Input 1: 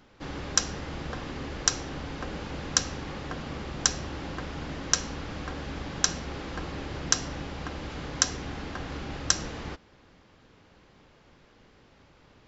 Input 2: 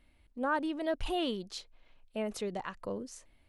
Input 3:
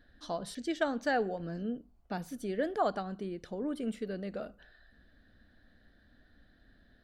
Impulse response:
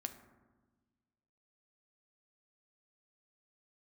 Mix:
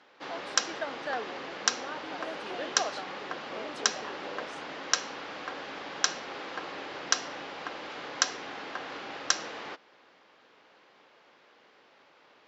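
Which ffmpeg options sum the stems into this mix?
-filter_complex "[0:a]volume=2dB[a];[1:a]acompressor=threshold=-36dB:ratio=6,adelay=1400,volume=-0.5dB[b];[2:a]volume=-3.5dB[c];[a][b][c]amix=inputs=3:normalize=0,highpass=490,lowpass=4.7k"

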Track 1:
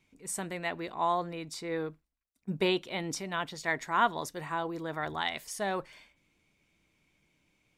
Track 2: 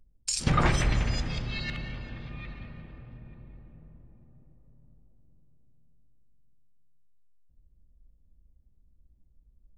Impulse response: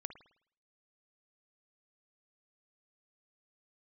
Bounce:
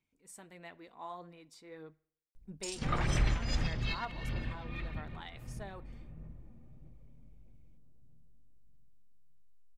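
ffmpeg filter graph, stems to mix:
-filter_complex "[0:a]volume=-18.5dB,asplit=3[a][b][c];[b]volume=-7.5dB[d];[1:a]alimiter=limit=-20.5dB:level=0:latency=1:release=451,adelay=2350,volume=0.5dB[e];[c]apad=whole_len=534614[f];[e][f]sidechaincompress=threshold=-50dB:ratio=8:attack=9.6:release=273[g];[2:a]atrim=start_sample=2205[h];[d][h]afir=irnorm=-1:irlink=0[i];[a][g][i]amix=inputs=3:normalize=0,aphaser=in_gain=1:out_gain=1:delay=4.3:decay=0.32:speed=1.6:type=sinusoidal"

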